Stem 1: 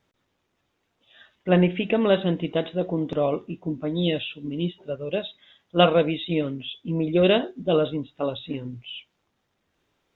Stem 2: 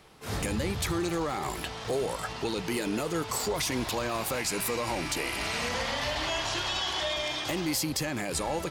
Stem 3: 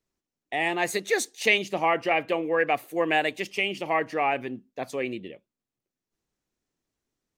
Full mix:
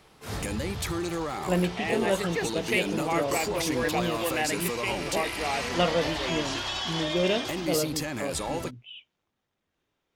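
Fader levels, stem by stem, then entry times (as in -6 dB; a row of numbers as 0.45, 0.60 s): -7.0, -1.0, -6.0 dB; 0.00, 0.00, 1.25 s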